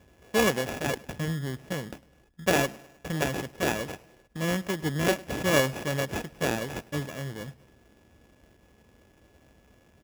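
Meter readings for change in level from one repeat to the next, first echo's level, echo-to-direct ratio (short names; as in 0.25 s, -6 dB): -5.5 dB, -22.0 dB, -20.5 dB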